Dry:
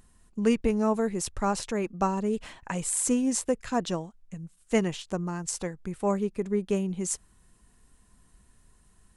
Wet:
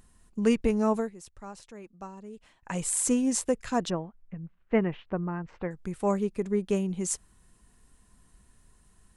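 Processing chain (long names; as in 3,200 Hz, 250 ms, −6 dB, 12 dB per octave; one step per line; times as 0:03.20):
0:00.97–0:02.75: duck −16 dB, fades 0.14 s
0:03.90–0:05.71: low-pass filter 2,300 Hz 24 dB per octave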